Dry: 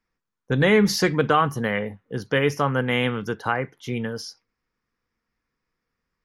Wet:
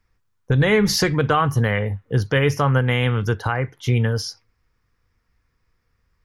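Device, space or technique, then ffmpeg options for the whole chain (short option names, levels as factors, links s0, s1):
car stereo with a boomy subwoofer: -af "lowshelf=f=140:t=q:w=1.5:g=10,alimiter=limit=0.168:level=0:latency=1:release=353,volume=2.24"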